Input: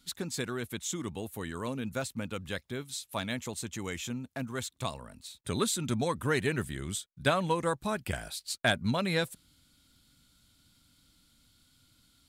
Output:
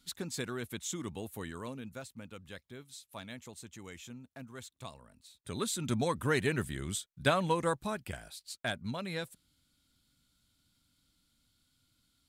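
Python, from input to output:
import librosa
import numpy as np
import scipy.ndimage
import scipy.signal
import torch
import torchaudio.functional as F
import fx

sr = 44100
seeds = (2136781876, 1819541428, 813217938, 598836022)

y = fx.gain(x, sr, db=fx.line((1.41, -3.0), (2.03, -11.0), (5.27, -11.0), (5.93, -1.0), (7.72, -1.0), (8.2, -8.5)))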